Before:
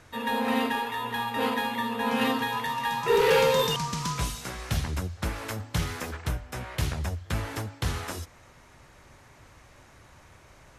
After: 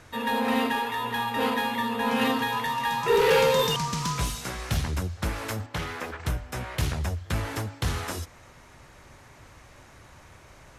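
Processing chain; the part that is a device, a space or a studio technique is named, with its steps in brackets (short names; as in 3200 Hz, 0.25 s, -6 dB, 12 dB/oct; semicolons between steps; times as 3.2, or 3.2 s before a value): 5.66–6.2 tone controls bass -9 dB, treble -10 dB; parallel distortion (in parallel at -8.5 dB: hard clip -31 dBFS, distortion -5 dB)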